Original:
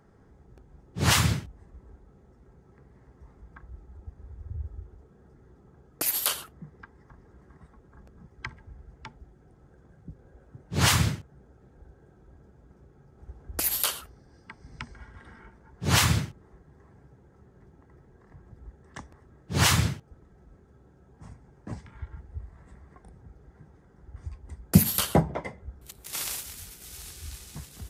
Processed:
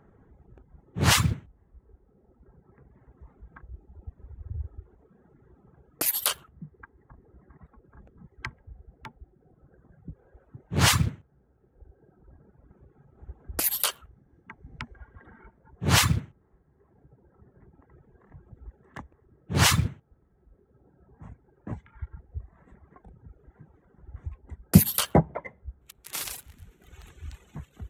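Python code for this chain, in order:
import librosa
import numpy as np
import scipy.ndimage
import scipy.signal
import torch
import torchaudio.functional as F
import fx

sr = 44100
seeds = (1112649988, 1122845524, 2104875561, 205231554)

y = fx.wiener(x, sr, points=9)
y = fx.dereverb_blind(y, sr, rt60_s=1.5)
y = F.gain(torch.from_numpy(y), 2.0).numpy()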